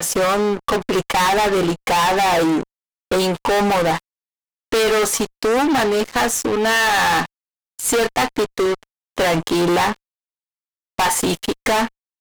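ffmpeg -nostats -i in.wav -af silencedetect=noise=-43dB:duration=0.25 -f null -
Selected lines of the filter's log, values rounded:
silence_start: 2.63
silence_end: 3.11 | silence_duration: 0.48
silence_start: 4.00
silence_end: 4.72 | silence_duration: 0.73
silence_start: 7.26
silence_end: 7.79 | silence_duration: 0.52
silence_start: 8.83
silence_end: 9.17 | silence_duration: 0.33
silence_start: 9.96
silence_end: 10.98 | silence_duration: 1.02
silence_start: 11.88
silence_end: 12.21 | silence_duration: 0.32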